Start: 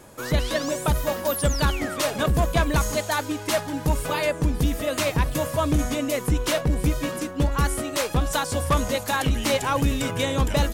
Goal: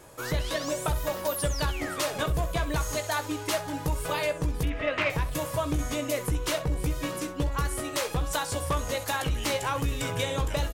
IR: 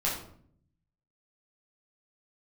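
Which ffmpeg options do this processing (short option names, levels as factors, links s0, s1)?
-filter_complex "[0:a]equalizer=f=230:w=3.1:g=-10,acompressor=threshold=0.0708:ratio=6,asettb=1/sr,asplit=3[s0][s1][s2];[s0]atrim=end=4.634[s3];[s1]atrim=start=4.63:end=5.1,asetpts=PTS-STARTPTS,afade=t=in:d=0.004:c=qsin,afade=t=out:st=0.466:d=0.004:c=qsin,lowpass=f=2300:t=q:w=2.4[s4];[s2]atrim=start=5.096[s5];[s3][s4]acrossfade=d=0.004:c1=hsin:c2=qsin[s6];[s6][s5]acrossfade=d=0.004:c1=qsin:c2=hsin,aeval=exprs='0.224*(cos(1*acos(clip(val(0)/0.224,-1,1)))-cos(1*PI/2))+0.02*(cos(3*acos(clip(val(0)/0.224,-1,1)))-cos(3*PI/2))+0.00158*(cos(6*acos(clip(val(0)/0.224,-1,1)))-cos(6*PI/2))':c=same,asplit=2[s7][s8];[s8]aecho=0:1:17|65:0.335|0.2[s9];[s7][s9]amix=inputs=2:normalize=0"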